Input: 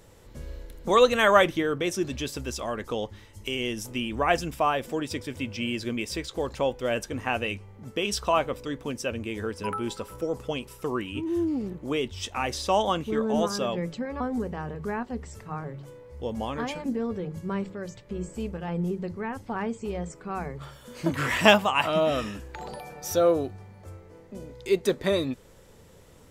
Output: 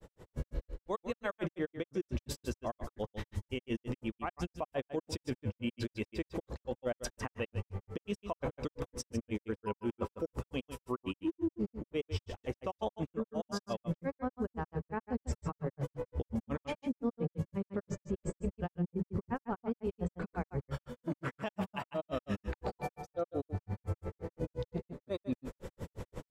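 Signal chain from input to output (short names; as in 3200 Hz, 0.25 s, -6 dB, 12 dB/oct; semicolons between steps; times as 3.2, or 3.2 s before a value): high shelf 2100 Hz -11 dB; AGC gain up to 12.5 dB; grains 88 ms, grains 5.7/s, spray 23 ms, pitch spread up and down by 0 st; reverse; compressor 16:1, threshold -32 dBFS, peak gain reduction 22 dB; reverse; limiter -28 dBFS, peak gain reduction 9 dB; on a send: echo 0.153 s -11 dB; on the sum: gain +2.5 dB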